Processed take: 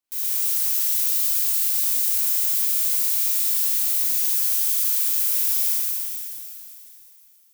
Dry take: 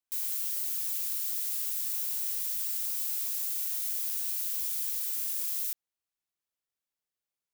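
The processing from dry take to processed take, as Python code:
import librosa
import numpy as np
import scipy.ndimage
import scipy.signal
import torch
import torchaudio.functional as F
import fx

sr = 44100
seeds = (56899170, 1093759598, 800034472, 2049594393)

y = fx.rev_schroeder(x, sr, rt60_s=2.9, comb_ms=27, drr_db=-8.0)
y = F.gain(torch.from_numpy(y), 2.5).numpy()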